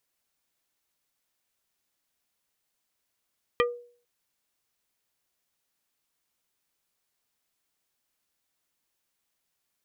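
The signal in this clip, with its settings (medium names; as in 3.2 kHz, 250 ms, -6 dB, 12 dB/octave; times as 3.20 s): wood hit plate, lowest mode 482 Hz, decay 0.47 s, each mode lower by 1.5 dB, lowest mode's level -19 dB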